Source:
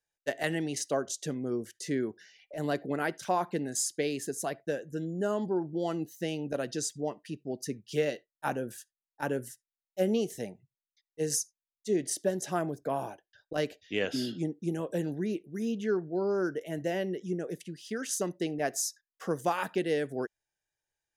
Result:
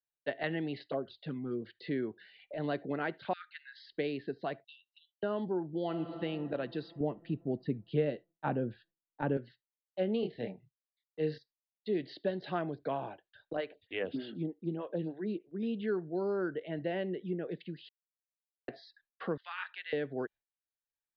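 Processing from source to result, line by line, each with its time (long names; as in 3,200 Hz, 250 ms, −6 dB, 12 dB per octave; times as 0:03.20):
0:00.87–0:01.62: flanger swept by the level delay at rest 3.2 ms, full sweep at −25 dBFS
0:03.33–0:03.92: linear-phase brick-wall high-pass 1,200 Hz
0:04.64–0:05.23: Chebyshev high-pass filter 2,700 Hz, order 10
0:05.83–0:06.23: thrown reverb, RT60 2.9 s, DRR 5 dB
0:07.00–0:09.37: spectral tilt −3.5 dB per octave
0:10.20–0:11.38: double-tracking delay 26 ms −3 dB
0:11.93–0:12.97: high-shelf EQ 4,200 Hz +11.5 dB
0:13.55–0:15.63: phaser with staggered stages 3.3 Hz
0:17.89–0:18.68: silence
0:19.37–0:19.93: high-pass filter 1,400 Hz 24 dB per octave
whole clip: Butterworth low-pass 4,400 Hz 96 dB per octave; noise gate with hold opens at −55 dBFS; multiband upward and downward compressor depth 40%; level −3.5 dB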